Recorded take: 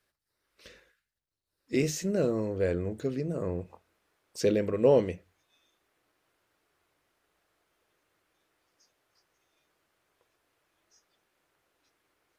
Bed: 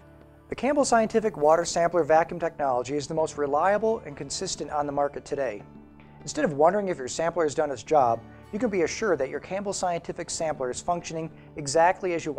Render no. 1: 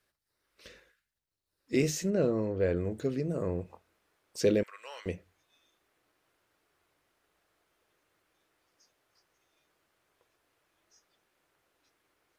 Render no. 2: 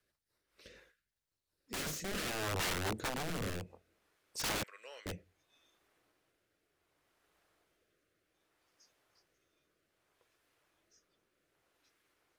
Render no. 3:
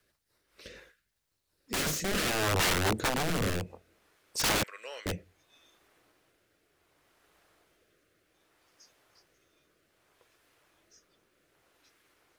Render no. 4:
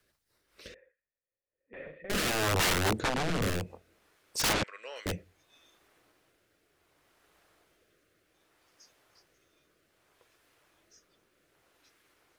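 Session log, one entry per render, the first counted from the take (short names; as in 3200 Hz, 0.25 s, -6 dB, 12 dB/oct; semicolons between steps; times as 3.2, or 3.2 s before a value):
2.1–2.76 air absorption 110 m; 4.63–5.06 Chebyshev high-pass 1300 Hz, order 3
wrapped overs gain 29 dB; rotary speaker horn 5 Hz, later 0.65 Hz, at 0.41
gain +8.5 dB
0.74–2.1 vocal tract filter e; 2.98–3.42 air absorption 60 m; 4.53–4.96 air absorption 89 m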